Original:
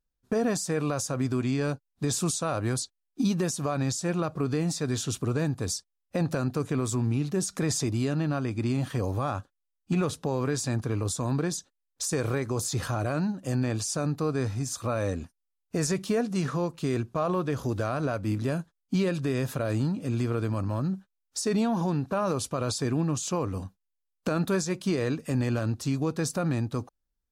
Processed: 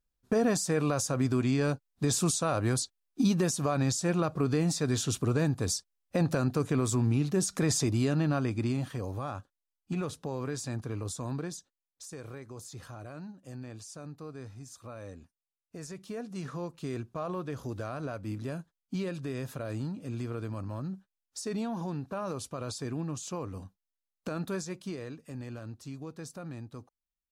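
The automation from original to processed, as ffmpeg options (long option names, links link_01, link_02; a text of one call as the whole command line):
ffmpeg -i in.wav -af "volume=7.5dB,afade=type=out:start_time=8.43:duration=0.54:silence=0.446684,afade=type=out:start_time=11.27:duration=0.76:silence=0.375837,afade=type=in:start_time=15.92:duration=0.78:silence=0.421697,afade=type=out:start_time=24.62:duration=0.49:silence=0.501187" out.wav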